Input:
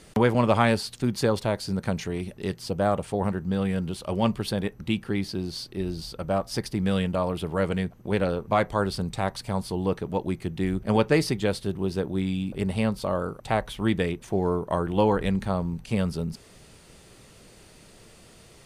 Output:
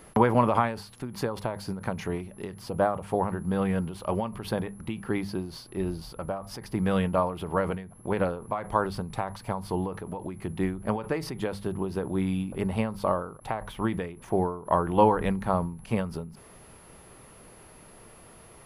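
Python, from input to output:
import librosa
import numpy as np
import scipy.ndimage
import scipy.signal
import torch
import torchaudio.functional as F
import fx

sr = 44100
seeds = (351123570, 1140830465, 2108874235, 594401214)

y = fx.hum_notches(x, sr, base_hz=50, count=4)
y = y + 10.0 ** (-50.0 / 20.0) * np.sin(2.0 * np.pi * 11000.0 * np.arange(len(y)) / sr)
y = fx.graphic_eq(y, sr, hz=(1000, 4000, 8000), db=(7, -6, -9))
y = fx.end_taper(y, sr, db_per_s=100.0)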